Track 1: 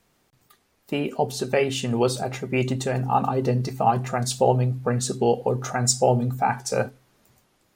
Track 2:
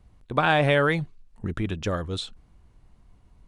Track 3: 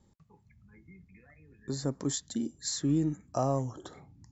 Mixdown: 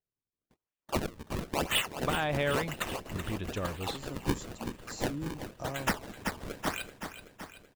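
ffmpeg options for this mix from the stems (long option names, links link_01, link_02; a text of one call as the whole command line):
ffmpeg -i stem1.wav -i stem2.wav -i stem3.wav -filter_complex "[0:a]highpass=frequency=2900:width_type=q:width=3.1,acrusher=samples=37:mix=1:aa=0.000001:lfo=1:lforange=59.2:lforate=0.99,agate=range=-29dB:threshold=-52dB:ratio=16:detection=peak,volume=-2dB,asplit=2[link_01][link_02];[link_02]volume=-10.5dB[link_03];[1:a]adelay=1700,volume=-8dB[link_04];[2:a]adelay=2250,volume=-11dB[link_05];[link_03]aecho=0:1:379|758|1137|1516|1895|2274|2653|3032|3411|3790:1|0.6|0.36|0.216|0.13|0.0778|0.0467|0.028|0.0168|0.0101[link_06];[link_01][link_04][link_05][link_06]amix=inputs=4:normalize=0,alimiter=limit=-18.5dB:level=0:latency=1:release=435" out.wav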